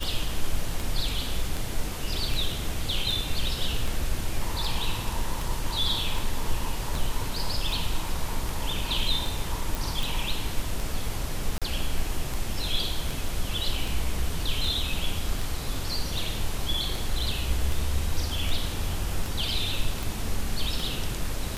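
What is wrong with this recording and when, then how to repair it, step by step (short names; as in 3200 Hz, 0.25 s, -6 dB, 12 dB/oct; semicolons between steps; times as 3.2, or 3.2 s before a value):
tick 78 rpm
9.75 pop
11.58–11.62 gap 36 ms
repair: de-click; interpolate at 11.58, 36 ms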